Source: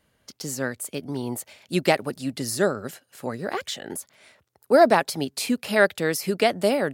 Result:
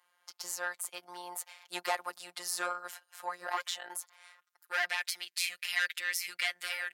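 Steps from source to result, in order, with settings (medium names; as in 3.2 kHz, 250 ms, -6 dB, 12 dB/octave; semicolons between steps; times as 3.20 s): saturation -17 dBFS, distortion -9 dB; robot voice 177 Hz; high-pass sweep 960 Hz -> 2 kHz, 4.20–4.95 s; trim -3 dB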